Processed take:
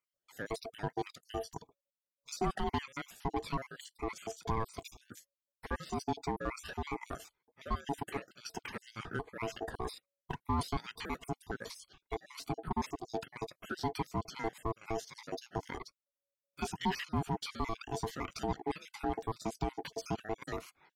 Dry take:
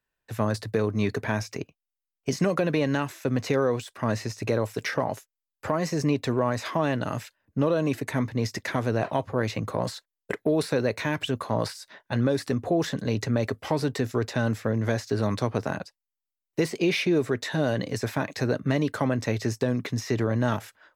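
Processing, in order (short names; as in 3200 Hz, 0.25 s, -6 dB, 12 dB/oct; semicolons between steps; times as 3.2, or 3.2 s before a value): random spectral dropouts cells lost 57%; ring modulator 560 Hz; 10.86–12.19 crackle 11/s -51 dBFS; in parallel at -4 dB: soft clip -29 dBFS, distortion -7 dB; on the sum: cascading phaser rising 1.7 Hz; gain -6 dB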